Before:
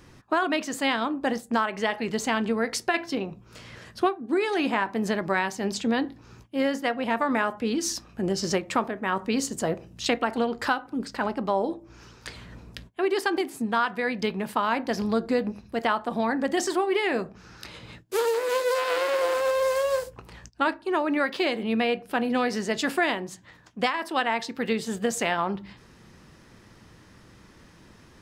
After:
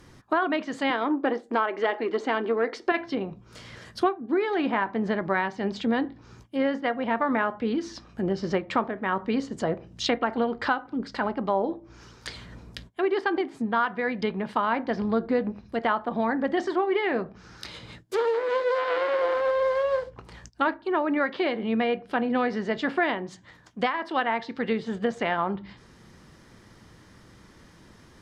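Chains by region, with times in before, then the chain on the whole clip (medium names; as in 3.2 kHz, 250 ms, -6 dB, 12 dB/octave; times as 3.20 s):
0.90–2.92 s: resonant low shelf 220 Hz -13.5 dB, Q 3 + transformer saturation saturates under 860 Hz
whole clip: band-stop 2.6 kHz, Q 13; low-pass that closes with the level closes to 2 kHz, closed at -24.5 dBFS; dynamic bell 4 kHz, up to +5 dB, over -49 dBFS, Q 0.93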